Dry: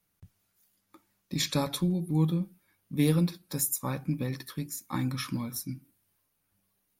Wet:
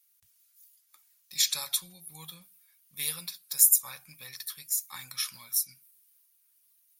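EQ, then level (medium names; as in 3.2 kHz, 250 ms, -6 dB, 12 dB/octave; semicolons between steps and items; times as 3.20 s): RIAA curve recording; amplifier tone stack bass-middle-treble 10-0-10; treble shelf 9.6 kHz -6.5 dB; 0.0 dB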